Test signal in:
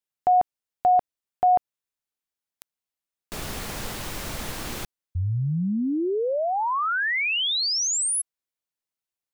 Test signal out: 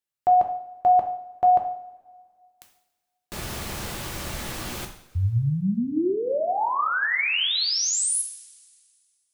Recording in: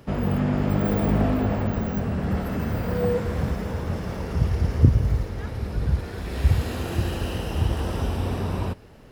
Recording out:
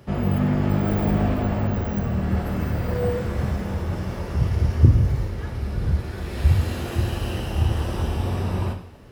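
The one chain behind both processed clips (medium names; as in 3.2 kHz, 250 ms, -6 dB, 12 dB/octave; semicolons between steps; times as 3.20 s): two-slope reverb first 0.55 s, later 2 s, from -18 dB, DRR 2.5 dB; trim -1.5 dB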